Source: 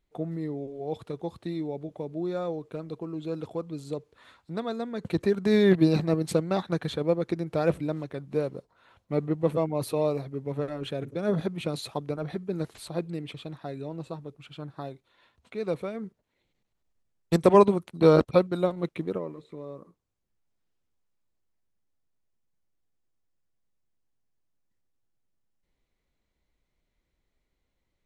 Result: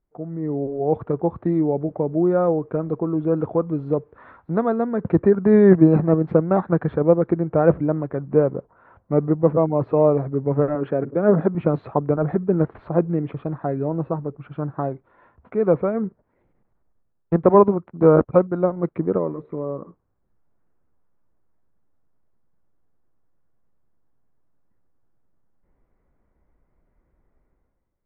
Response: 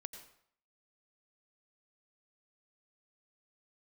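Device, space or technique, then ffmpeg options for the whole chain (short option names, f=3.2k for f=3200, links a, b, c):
action camera in a waterproof case: -filter_complex "[0:a]asettb=1/sr,asplit=3[a][b][c];[a]atrim=end=3.484[d];[b]atrim=start=3.48:end=4.92,asetpts=PTS-STARTPTS,afade=t=in:d=0.004:c=qsin,afade=t=out:st=1.436:d=0.004:c=qsin,aemphasis=mode=production:type=50fm[e];[c]atrim=start=4.916[f];[d][e]acrossfade=d=0.004:c1=hsin:c2=qsin[g];[g][f]acrossfade=d=0.004:c1=qsin:c2=hsin,asettb=1/sr,asplit=3[h][i][j];[h]atrim=end=10.754[k];[i]atrim=start=10.75:end=11.55,asetpts=PTS-STARTPTS,afade=t=in:d=0.004:c=qsin,afade=t=out:st=0.796:d=0.004:c=qsin,highpass=170[l];[j]atrim=start=11.546[m];[k][l]acrossfade=d=0.004:c1=hsin:c2=qsin[n];[n][m]acrossfade=d=0.004:c1=qsin:c2=hsin,lowpass=f=1.5k:w=0.5412,lowpass=f=1.5k:w=1.3066,dynaudnorm=f=110:g=9:m=13.5dB,volume=-1dB" -ar 24000 -c:a aac -b:a 96k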